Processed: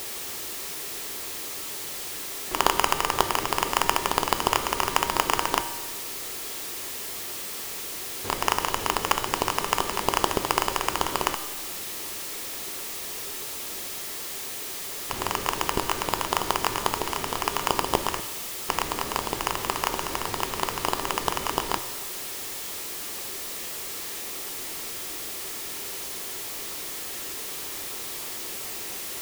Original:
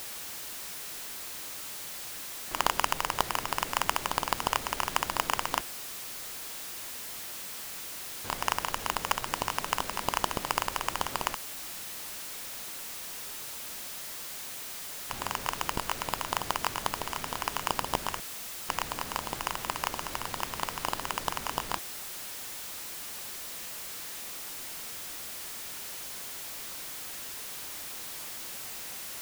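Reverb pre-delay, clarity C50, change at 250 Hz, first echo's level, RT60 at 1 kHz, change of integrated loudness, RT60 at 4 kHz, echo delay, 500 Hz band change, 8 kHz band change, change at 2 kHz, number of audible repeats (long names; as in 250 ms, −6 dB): 3 ms, 11.5 dB, +8.5 dB, no echo audible, 1.3 s, +5.5 dB, 1.3 s, no echo audible, +9.0 dB, +5.5 dB, +4.5 dB, no echo audible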